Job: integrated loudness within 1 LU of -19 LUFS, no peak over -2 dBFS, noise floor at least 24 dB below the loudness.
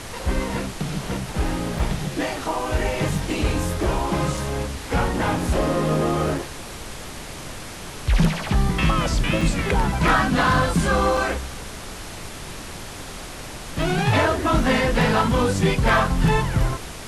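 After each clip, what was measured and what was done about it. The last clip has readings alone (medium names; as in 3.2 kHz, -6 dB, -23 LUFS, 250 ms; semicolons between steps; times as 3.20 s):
dropouts 7; longest dropout 2.6 ms; noise floor -36 dBFS; noise floor target -46 dBFS; loudness -22.0 LUFS; peak level -8.0 dBFS; loudness target -19.0 LUFS
-> interpolate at 1.79/3.18/4.37/6.38/9.41/11.17/13.82 s, 2.6 ms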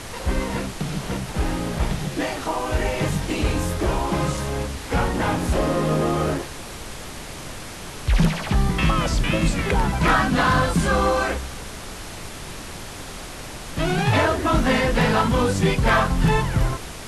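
dropouts 0; noise floor -36 dBFS; noise floor target -46 dBFS
-> noise print and reduce 10 dB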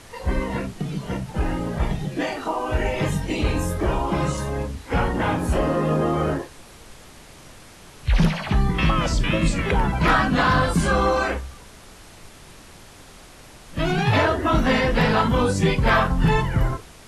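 noise floor -46 dBFS; loudness -22.0 LUFS; peak level -8.5 dBFS; loudness target -19.0 LUFS
-> trim +3 dB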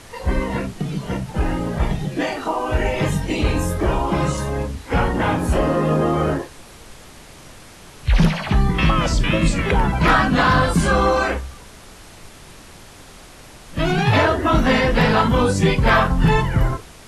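loudness -19.0 LUFS; peak level -5.5 dBFS; noise floor -43 dBFS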